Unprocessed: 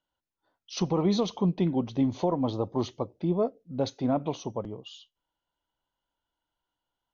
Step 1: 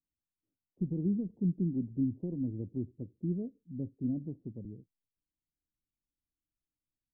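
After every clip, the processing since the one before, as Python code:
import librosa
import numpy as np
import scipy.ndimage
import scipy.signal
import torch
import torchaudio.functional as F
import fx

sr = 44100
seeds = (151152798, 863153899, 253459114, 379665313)

y = scipy.signal.sosfilt(scipy.signal.cheby2(4, 80, 1800.0, 'lowpass', fs=sr, output='sos'), x)
y = y * librosa.db_to_amplitude(-4.0)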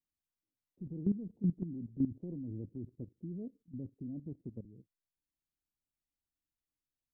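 y = fx.level_steps(x, sr, step_db=14)
y = y * librosa.db_to_amplitude(1.0)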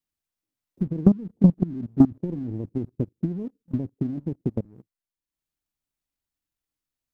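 y = fx.leveller(x, sr, passes=1)
y = fx.transient(y, sr, attack_db=11, sustain_db=-5)
y = y * librosa.db_to_amplitude(6.0)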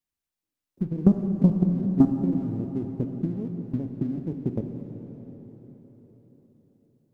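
y = fx.rev_plate(x, sr, seeds[0], rt60_s=4.7, hf_ratio=0.85, predelay_ms=0, drr_db=4.0)
y = y * librosa.db_to_amplitude(-2.0)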